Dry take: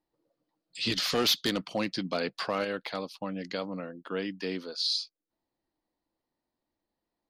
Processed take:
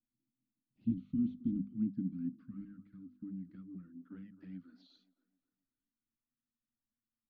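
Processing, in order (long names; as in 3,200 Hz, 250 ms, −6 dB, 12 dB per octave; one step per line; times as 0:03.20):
elliptic band-stop filter 260–1,400 Hz, stop band 40 dB
mains-hum notches 50/100/150/200/250 Hz
flanger swept by the level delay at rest 8.6 ms, full sweep at −29.5 dBFS
in parallel at −10 dB: hard clipping −27.5 dBFS, distortion −13 dB
on the sum: low-pass filter sweep 270 Hz → 950 Hz, 0:02.98–0:05.49
delay with a band-pass on its return 263 ms, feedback 41%, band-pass 710 Hz, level −12 dB
level −5 dB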